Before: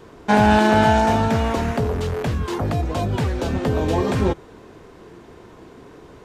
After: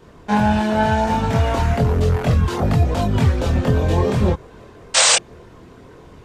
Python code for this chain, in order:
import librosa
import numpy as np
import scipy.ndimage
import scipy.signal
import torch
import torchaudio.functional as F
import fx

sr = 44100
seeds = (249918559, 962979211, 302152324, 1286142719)

y = fx.spec_paint(x, sr, seeds[0], shape='noise', start_s=4.94, length_s=0.22, low_hz=460.0, high_hz=8900.0, level_db=-13.0)
y = fx.chorus_voices(y, sr, voices=6, hz=0.9, base_ms=24, depth_ms=1.1, mix_pct=50)
y = fx.rider(y, sr, range_db=10, speed_s=0.5)
y = y * librosa.db_to_amplitude(2.0)